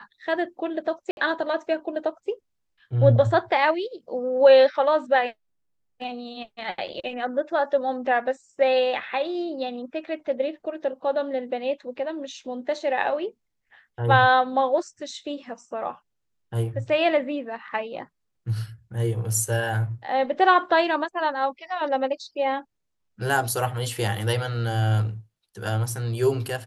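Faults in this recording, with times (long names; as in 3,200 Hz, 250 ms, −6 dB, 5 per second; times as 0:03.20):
0:01.11–0:01.17: drop-out 61 ms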